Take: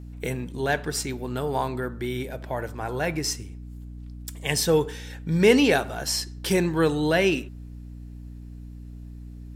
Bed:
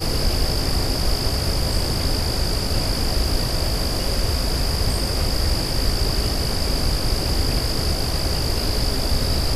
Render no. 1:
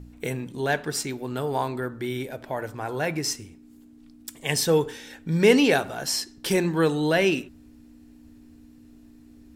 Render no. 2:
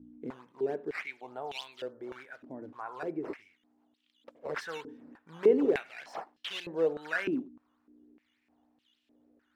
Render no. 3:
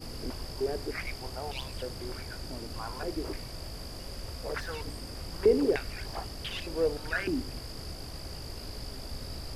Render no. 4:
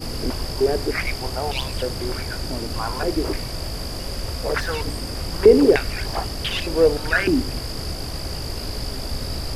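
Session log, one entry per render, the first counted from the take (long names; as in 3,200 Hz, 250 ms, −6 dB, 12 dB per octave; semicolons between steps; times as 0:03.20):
hum removal 60 Hz, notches 3
sample-and-hold swept by an LFO 8×, swing 160% 3.4 Hz; band-pass on a step sequencer 3.3 Hz 270–3,100 Hz
mix in bed −19 dB
level +12 dB; brickwall limiter −2 dBFS, peak gain reduction 1 dB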